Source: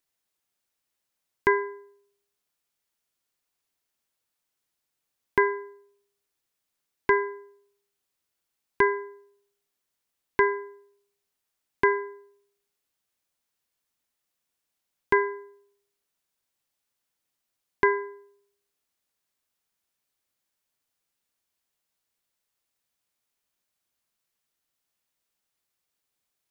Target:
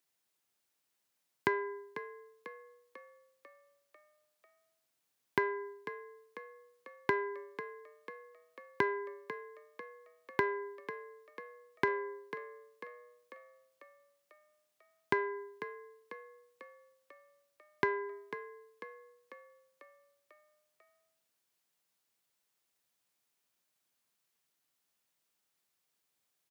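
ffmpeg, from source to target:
-filter_complex "[0:a]aeval=exprs='0.398*(cos(1*acos(clip(val(0)/0.398,-1,1)))-cos(1*PI/2))+0.02*(cos(4*acos(clip(val(0)/0.398,-1,1)))-cos(4*PI/2))+0.00282*(cos(6*acos(clip(val(0)/0.398,-1,1)))-cos(6*PI/2))+0.00282*(cos(8*acos(clip(val(0)/0.398,-1,1)))-cos(8*PI/2))':c=same,acompressor=threshold=0.0355:ratio=4,highpass=f=100:w=0.5412,highpass=f=100:w=1.3066,asplit=7[s0][s1][s2][s3][s4][s5][s6];[s1]adelay=495,afreqshift=41,volume=0.251[s7];[s2]adelay=990,afreqshift=82,volume=0.138[s8];[s3]adelay=1485,afreqshift=123,volume=0.0759[s9];[s4]adelay=1980,afreqshift=164,volume=0.0417[s10];[s5]adelay=2475,afreqshift=205,volume=0.0229[s11];[s6]adelay=2970,afreqshift=246,volume=0.0126[s12];[s0][s7][s8][s9][s10][s11][s12]amix=inputs=7:normalize=0"

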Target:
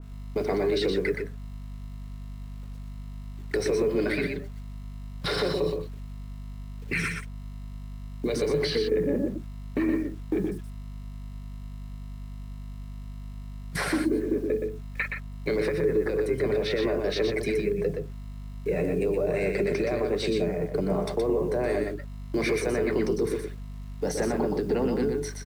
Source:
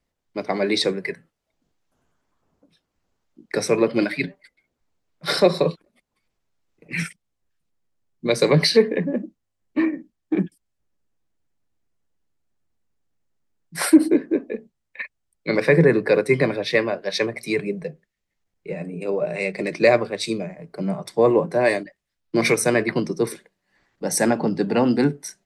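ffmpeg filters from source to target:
-filter_complex "[0:a]agate=range=0.158:threshold=0.01:ratio=16:detection=peak,equalizer=f=420:w=5.9:g=13,acompressor=threshold=0.112:ratio=20,alimiter=limit=0.075:level=0:latency=1:release=13,acrossover=split=260|4700[s0][s1][s2];[s0]acompressor=threshold=0.01:ratio=4[s3];[s1]acompressor=threshold=0.0282:ratio=4[s4];[s2]acompressor=threshold=0.00355:ratio=4[s5];[s3][s4][s5]amix=inputs=3:normalize=0,aeval=exprs='val(0)+0.00501*(sin(2*PI*50*n/s)+sin(2*PI*2*50*n/s)/2+sin(2*PI*3*50*n/s)/3+sin(2*PI*4*50*n/s)/4+sin(2*PI*5*50*n/s)/5)':c=same,acrusher=bits=9:mix=0:aa=0.000001,asplit=2[s6][s7];[s7]asetrate=33038,aresample=44100,atempo=1.33484,volume=0.251[s8];[s6][s8]amix=inputs=2:normalize=0,asplit=2[s9][s10];[s10]aecho=0:1:121:0.562[s11];[s9][s11]amix=inputs=2:normalize=0,adynamicequalizer=threshold=0.00355:dfrequency=2100:dqfactor=0.7:tfrequency=2100:tqfactor=0.7:attack=5:release=100:ratio=0.375:range=2:mode=cutabove:tftype=highshelf,volume=1.88"

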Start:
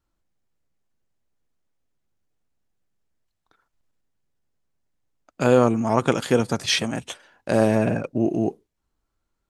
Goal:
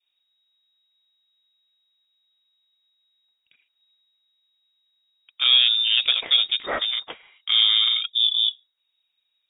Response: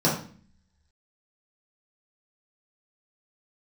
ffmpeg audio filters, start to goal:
-af "acontrast=90,lowpass=f=3200:t=q:w=0.5098,lowpass=f=3200:t=q:w=0.6013,lowpass=f=3200:t=q:w=0.9,lowpass=f=3200:t=q:w=2.563,afreqshift=-3800,adynamicequalizer=threshold=0.0178:dfrequency=1300:dqfactor=1.7:tfrequency=1300:tqfactor=1.7:attack=5:release=100:ratio=0.375:range=2.5:mode=cutabove:tftype=bell,volume=0.531"

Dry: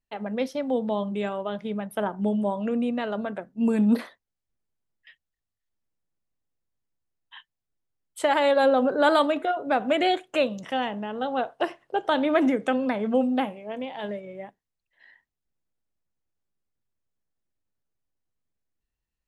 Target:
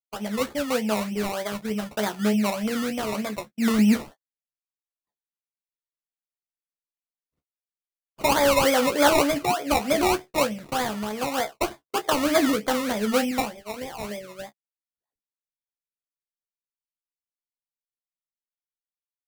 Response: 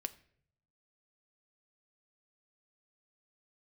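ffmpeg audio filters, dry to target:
-filter_complex "[0:a]agate=range=0.00794:threshold=0.0112:ratio=16:detection=peak,asettb=1/sr,asplit=3[s0][s1][s2];[s0]atrim=end=13.314[s3];[s1]atrim=start=13.31:end=14.18,asetpts=PTS-STARTPTS,afade=t=in:d=0.004:c=qsin,afade=t=out:st=0.866:d=0.004:c=qsin,lowshelf=f=220:g=-6.5[s4];[s2]atrim=start=14.176[s5];[s3][s4]acrossfade=d=0.004:c1=hsin:c2=qsin[s6];[s6][s5]acrossfade=d=0.004:c1=qsin:c2=hsin,acrusher=samples=22:mix=1:aa=0.000001:lfo=1:lforange=13.2:lforate=3.3,asplit=2[s7][s8];[s8]aecho=0:1:14|28:0.376|0.188[s9];[s7][s9]amix=inputs=2:normalize=0"

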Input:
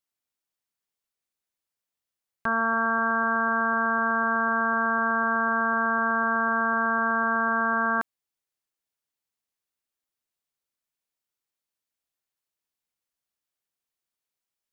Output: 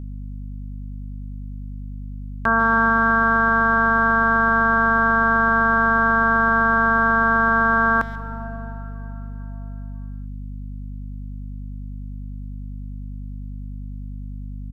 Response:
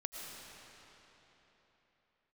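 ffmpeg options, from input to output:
-filter_complex "[0:a]asplit=2[s0][s1];[s1]adelay=140,highpass=300,lowpass=3400,asoftclip=type=hard:threshold=0.0631,volume=0.1[s2];[s0][s2]amix=inputs=2:normalize=0,asplit=2[s3][s4];[1:a]atrim=start_sample=2205[s5];[s4][s5]afir=irnorm=-1:irlink=0,volume=0.531[s6];[s3][s6]amix=inputs=2:normalize=0,aeval=exprs='val(0)+0.0178*(sin(2*PI*50*n/s)+sin(2*PI*2*50*n/s)/2+sin(2*PI*3*50*n/s)/3+sin(2*PI*4*50*n/s)/4+sin(2*PI*5*50*n/s)/5)':c=same,volume=1.68"

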